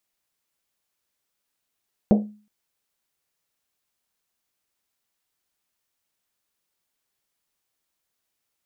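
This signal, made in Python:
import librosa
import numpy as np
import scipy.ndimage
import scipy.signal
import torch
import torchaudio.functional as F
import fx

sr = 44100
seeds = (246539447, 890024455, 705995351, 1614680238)

y = fx.risset_drum(sr, seeds[0], length_s=0.37, hz=210.0, decay_s=0.4, noise_hz=510.0, noise_width_hz=410.0, noise_pct=25)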